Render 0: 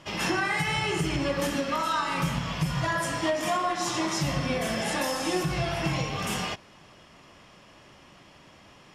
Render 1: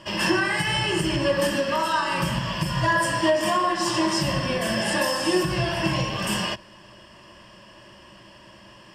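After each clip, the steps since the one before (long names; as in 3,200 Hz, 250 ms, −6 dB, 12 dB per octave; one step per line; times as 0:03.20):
EQ curve with evenly spaced ripples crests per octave 1.3, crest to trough 10 dB
level +3 dB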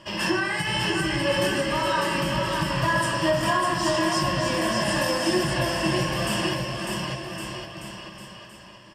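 bouncing-ball delay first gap 600 ms, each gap 0.85×, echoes 5
level −2.5 dB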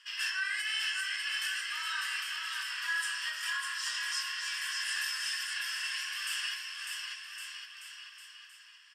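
elliptic high-pass filter 1,400 Hz, stop band 80 dB
level −5 dB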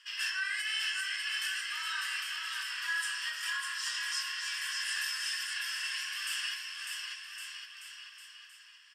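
low-shelf EQ 500 Hz −8 dB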